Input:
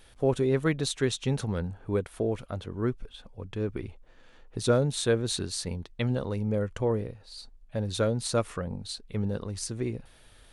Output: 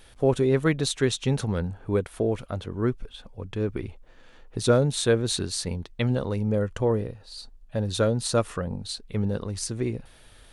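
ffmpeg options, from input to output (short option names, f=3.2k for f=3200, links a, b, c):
-filter_complex "[0:a]asettb=1/sr,asplit=3[a][b][c];[a]atrim=end=6.444[d];[b]atrim=start=6.44:end=8.87,asetpts=PTS-STARTPTS,afade=t=in:d=0.004:c=qsin,afade=t=out:st=2.426:d=0.004:c=qsin,bandreject=f=2.2k:w=12[e];[c]atrim=start=8.866[f];[d][e]acrossfade=d=0.004:c1=hsin:c2=qsin[g];[g][f]acrossfade=d=0.004:c1=qsin:c2=hsin,volume=3.5dB"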